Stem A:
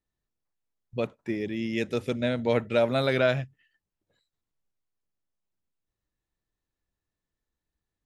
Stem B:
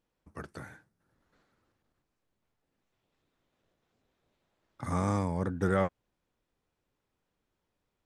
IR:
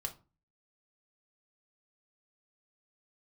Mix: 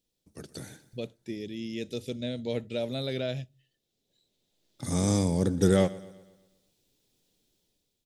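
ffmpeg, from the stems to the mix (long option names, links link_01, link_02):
-filter_complex "[0:a]acrossover=split=2600[link_01][link_02];[link_02]acompressor=threshold=-42dB:ratio=4:attack=1:release=60[link_03];[link_01][link_03]amix=inputs=2:normalize=0,volume=-6.5dB,asplit=3[link_04][link_05][link_06];[link_05]volume=-15dB[link_07];[1:a]equalizer=frequency=61:width_type=o:width=0.6:gain=-14,dynaudnorm=framelen=170:gausssize=7:maxgain=10dB,volume=-2dB,asplit=2[link_08][link_09];[link_09]volume=-19dB[link_10];[link_06]apad=whole_len=355340[link_11];[link_08][link_11]sidechaincompress=threshold=-45dB:ratio=8:attack=11:release=1370[link_12];[2:a]atrim=start_sample=2205[link_13];[link_07][link_13]afir=irnorm=-1:irlink=0[link_14];[link_10]aecho=0:1:122|244|366|488|610|732|854:1|0.49|0.24|0.118|0.0576|0.0282|0.0138[link_15];[link_04][link_12][link_14][link_15]amix=inputs=4:normalize=0,firequalizer=gain_entry='entry(410,0);entry(1100,-15);entry(3600,9)':delay=0.05:min_phase=1"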